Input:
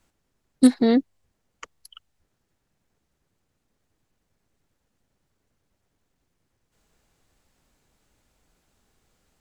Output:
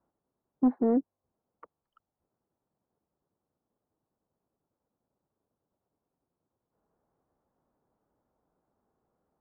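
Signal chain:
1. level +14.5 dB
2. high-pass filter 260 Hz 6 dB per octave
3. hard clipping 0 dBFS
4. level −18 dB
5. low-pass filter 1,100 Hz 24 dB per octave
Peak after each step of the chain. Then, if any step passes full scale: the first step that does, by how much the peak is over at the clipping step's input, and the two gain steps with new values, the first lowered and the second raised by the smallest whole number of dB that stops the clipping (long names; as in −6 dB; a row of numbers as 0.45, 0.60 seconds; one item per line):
+11.0, +8.0, 0.0, −18.0, −17.0 dBFS
step 1, 8.0 dB
step 1 +6.5 dB, step 4 −10 dB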